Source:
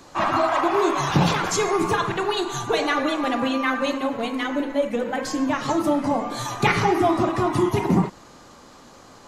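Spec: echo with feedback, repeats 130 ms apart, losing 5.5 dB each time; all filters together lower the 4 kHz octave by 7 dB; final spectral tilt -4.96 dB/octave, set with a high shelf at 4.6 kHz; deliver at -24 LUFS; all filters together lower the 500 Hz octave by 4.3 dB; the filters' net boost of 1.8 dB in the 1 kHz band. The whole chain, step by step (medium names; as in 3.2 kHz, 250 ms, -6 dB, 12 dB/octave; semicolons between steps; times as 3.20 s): peaking EQ 500 Hz -7.5 dB; peaking EQ 1 kHz +5 dB; peaking EQ 4 kHz -6.5 dB; treble shelf 4.6 kHz -6.5 dB; feedback delay 130 ms, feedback 53%, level -5.5 dB; trim -2 dB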